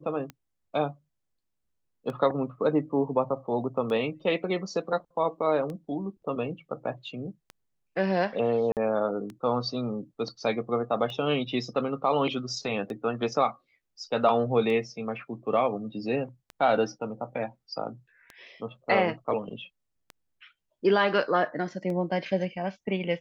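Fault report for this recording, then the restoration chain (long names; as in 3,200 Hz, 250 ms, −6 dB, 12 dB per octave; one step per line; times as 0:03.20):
scratch tick 33 1/3 rpm −25 dBFS
0:08.72–0:08.77: drop-out 48 ms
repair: click removal
repair the gap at 0:08.72, 48 ms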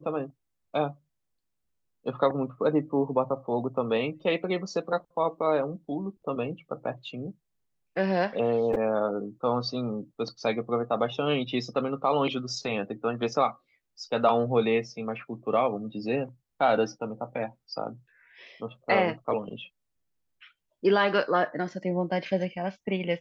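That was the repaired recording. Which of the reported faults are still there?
none of them is left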